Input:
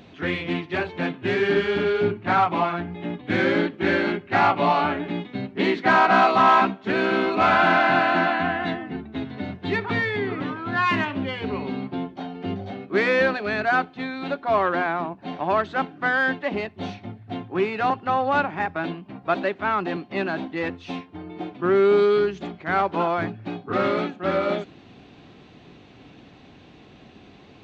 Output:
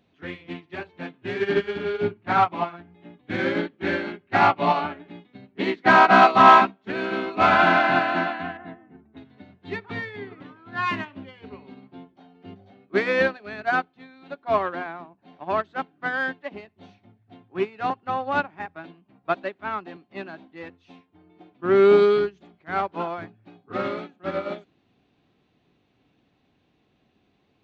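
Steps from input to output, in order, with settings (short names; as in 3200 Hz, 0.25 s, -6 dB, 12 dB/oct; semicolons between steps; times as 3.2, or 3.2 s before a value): 8.57–9.17 LPF 1700 Hz 12 dB/oct; upward expander 2.5:1, over -30 dBFS; gain +5.5 dB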